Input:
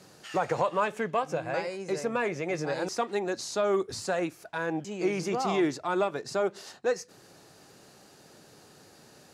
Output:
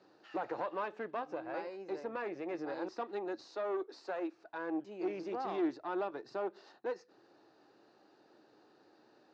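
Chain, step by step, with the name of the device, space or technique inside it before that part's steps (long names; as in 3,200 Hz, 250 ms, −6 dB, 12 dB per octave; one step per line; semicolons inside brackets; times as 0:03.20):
0:03.48–0:04.34: high-pass filter 310 Hz 24 dB per octave
guitar amplifier (tube saturation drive 23 dB, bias 0.5; bass and treble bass −6 dB, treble +3 dB; loudspeaker in its box 89–3,800 Hz, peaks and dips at 94 Hz −8 dB, 160 Hz −9 dB, 320 Hz +9 dB, 840 Hz +3 dB, 2,200 Hz −7 dB, 3,200 Hz −8 dB)
level −7.5 dB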